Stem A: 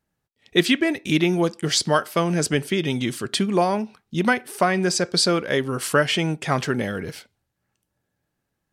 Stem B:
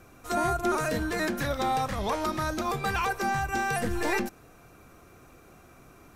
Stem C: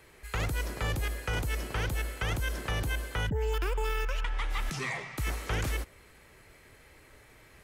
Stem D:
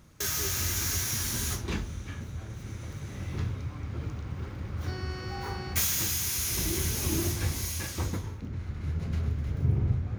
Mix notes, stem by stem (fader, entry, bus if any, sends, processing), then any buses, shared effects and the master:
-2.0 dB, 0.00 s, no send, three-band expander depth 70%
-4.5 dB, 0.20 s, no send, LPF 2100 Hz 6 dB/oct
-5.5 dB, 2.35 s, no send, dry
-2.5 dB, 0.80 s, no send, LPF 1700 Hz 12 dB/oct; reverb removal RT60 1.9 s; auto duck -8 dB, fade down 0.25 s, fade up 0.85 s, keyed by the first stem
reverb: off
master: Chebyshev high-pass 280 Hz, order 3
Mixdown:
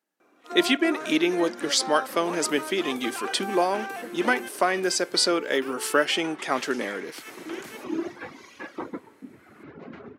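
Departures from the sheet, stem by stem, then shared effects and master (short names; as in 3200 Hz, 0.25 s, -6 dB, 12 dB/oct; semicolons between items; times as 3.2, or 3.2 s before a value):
stem A: missing three-band expander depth 70%; stem C: entry 2.35 s -> 2.00 s; stem D -2.5 dB -> +6.5 dB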